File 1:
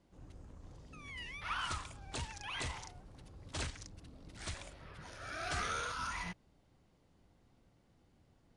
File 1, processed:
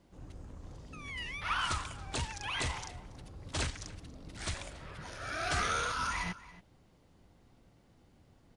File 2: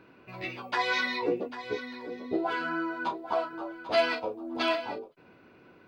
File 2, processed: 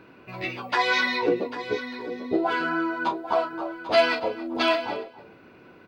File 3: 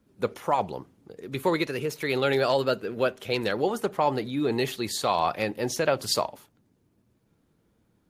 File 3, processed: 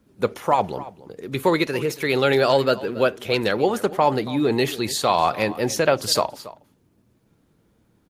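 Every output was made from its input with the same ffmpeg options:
-filter_complex "[0:a]asplit=2[a][b];[b]adelay=279.9,volume=-17dB,highshelf=f=4k:g=-6.3[c];[a][c]amix=inputs=2:normalize=0,volume=5.5dB"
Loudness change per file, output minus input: +5.5, +5.5, +5.5 LU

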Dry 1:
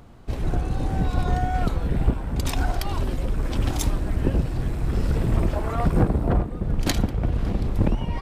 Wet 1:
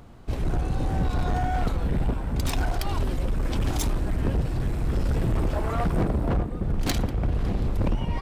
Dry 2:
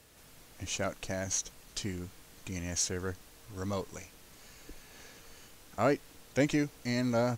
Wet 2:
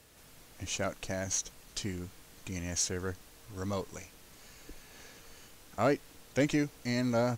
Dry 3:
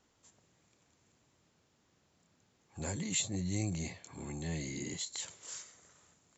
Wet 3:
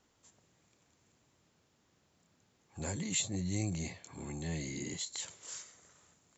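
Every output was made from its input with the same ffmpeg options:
-af "asoftclip=type=hard:threshold=-19.5dB"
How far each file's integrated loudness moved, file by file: -2.0, 0.0, 0.0 LU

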